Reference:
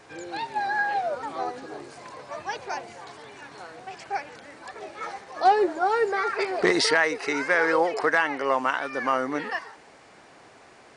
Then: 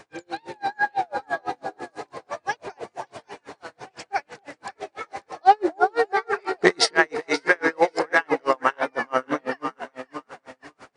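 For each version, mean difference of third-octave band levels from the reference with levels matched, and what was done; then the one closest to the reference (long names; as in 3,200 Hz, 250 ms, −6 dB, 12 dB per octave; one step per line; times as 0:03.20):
8.5 dB: delay that swaps between a low-pass and a high-pass 270 ms, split 820 Hz, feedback 61%, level −4 dB
tremolo with a sine in dB 6 Hz, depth 38 dB
level +6.5 dB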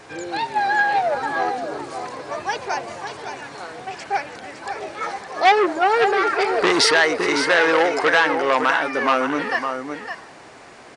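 3.0 dB: single-tap delay 560 ms −8.5 dB
saturating transformer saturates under 1,900 Hz
level +7.5 dB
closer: second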